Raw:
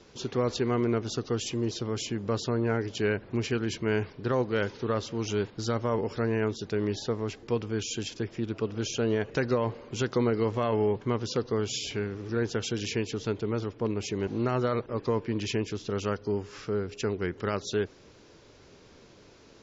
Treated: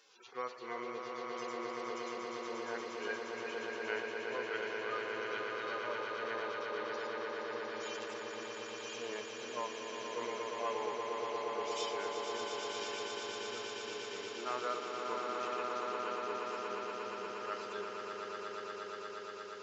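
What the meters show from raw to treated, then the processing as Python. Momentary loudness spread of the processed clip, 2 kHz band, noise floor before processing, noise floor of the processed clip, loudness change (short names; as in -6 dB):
5 LU, -2.5 dB, -55 dBFS, -46 dBFS, -9.5 dB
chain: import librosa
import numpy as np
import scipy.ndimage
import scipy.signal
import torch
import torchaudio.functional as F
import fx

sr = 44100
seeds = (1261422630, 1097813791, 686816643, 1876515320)

y = fx.hpss_only(x, sr, part='harmonic')
y = scipy.signal.sosfilt(scipy.signal.butter(2, 940.0, 'highpass', fs=sr, output='sos'), y)
y = fx.wow_flutter(y, sr, seeds[0], rate_hz=2.1, depth_cents=34.0)
y = fx.echo_swell(y, sr, ms=118, loudest=8, wet_db=-6.0)
y = F.gain(torch.from_numpy(y), -2.0).numpy()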